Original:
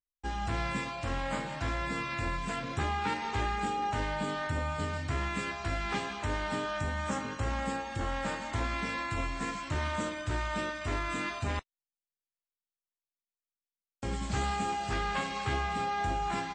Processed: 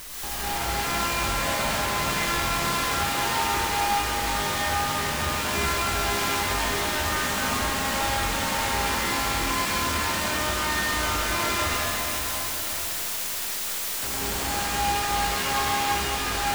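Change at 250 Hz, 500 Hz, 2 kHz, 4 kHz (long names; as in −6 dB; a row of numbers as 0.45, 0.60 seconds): +4.0, +6.5, +9.5, +15.0 decibels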